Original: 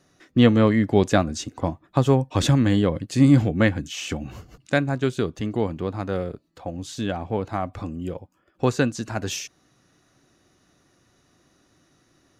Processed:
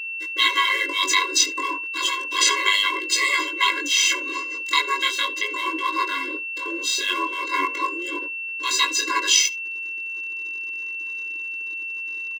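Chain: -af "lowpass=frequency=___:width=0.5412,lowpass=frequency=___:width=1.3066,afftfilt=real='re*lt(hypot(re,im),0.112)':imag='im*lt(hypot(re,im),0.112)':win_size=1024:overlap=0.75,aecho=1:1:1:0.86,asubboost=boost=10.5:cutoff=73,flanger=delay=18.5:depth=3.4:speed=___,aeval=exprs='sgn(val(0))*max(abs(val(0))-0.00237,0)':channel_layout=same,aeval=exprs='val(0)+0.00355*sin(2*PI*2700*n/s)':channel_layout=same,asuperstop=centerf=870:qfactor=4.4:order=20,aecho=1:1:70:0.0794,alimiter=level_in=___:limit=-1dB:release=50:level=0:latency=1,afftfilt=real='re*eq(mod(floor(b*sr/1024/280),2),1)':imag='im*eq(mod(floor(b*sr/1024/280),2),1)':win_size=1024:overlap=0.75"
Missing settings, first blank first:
7300, 7300, 0.34, 20.5dB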